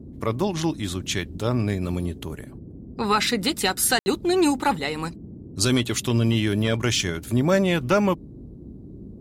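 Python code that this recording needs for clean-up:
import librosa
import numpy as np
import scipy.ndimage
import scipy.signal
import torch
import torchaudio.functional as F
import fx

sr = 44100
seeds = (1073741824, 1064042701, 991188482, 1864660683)

y = fx.fix_ambience(x, sr, seeds[0], print_start_s=8.16, print_end_s=8.66, start_s=3.99, end_s=4.06)
y = fx.noise_reduce(y, sr, print_start_s=8.16, print_end_s=8.66, reduce_db=27.0)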